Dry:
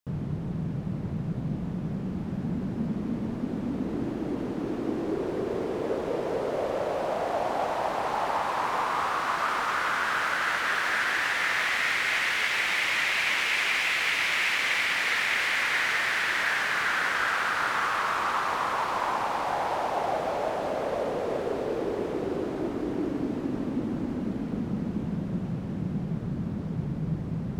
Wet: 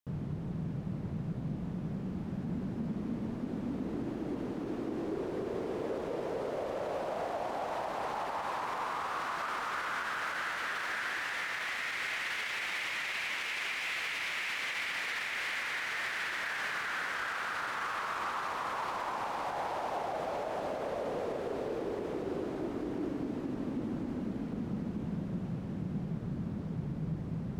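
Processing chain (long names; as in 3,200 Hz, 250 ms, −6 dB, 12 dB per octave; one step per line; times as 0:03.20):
brickwall limiter −21.5 dBFS, peak gain reduction 7.5 dB
level −5.5 dB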